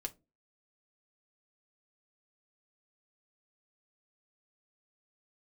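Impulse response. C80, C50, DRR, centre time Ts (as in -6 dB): 30.0 dB, 22.0 dB, 3.5 dB, 6 ms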